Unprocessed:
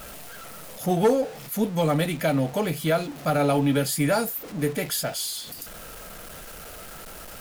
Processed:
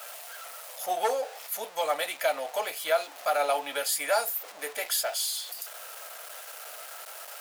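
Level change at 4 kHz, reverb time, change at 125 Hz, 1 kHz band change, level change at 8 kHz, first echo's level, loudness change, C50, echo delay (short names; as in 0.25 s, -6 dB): 0.0 dB, none, under -40 dB, -0.5 dB, 0.0 dB, none, -5.5 dB, none, none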